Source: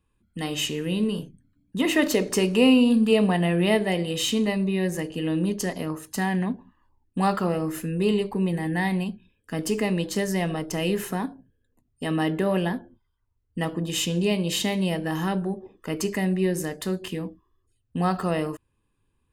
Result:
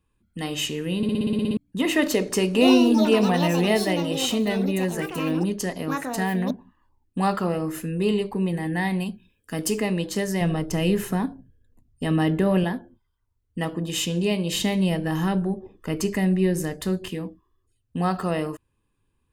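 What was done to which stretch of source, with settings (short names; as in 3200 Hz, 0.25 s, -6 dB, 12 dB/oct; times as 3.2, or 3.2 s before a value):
0.97 stutter in place 0.06 s, 10 plays
2.46–8.06 echoes that change speed 87 ms, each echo +6 st, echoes 2, each echo -6 dB
9–9.78 high shelf 5500 Hz +8 dB
10.41–12.64 low shelf 160 Hz +12 dB
14.53–17.1 low shelf 130 Hz +10.5 dB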